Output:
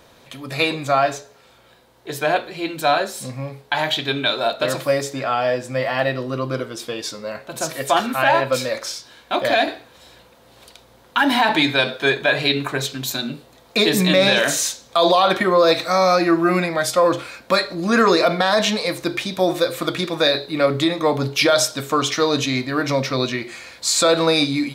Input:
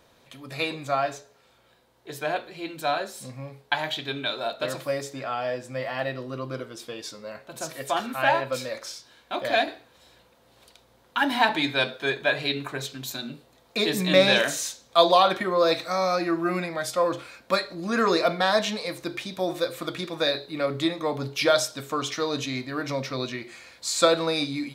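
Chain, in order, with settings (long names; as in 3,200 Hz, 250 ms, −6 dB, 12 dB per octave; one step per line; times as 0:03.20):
brickwall limiter −15 dBFS, peak gain reduction 10.5 dB
level +9 dB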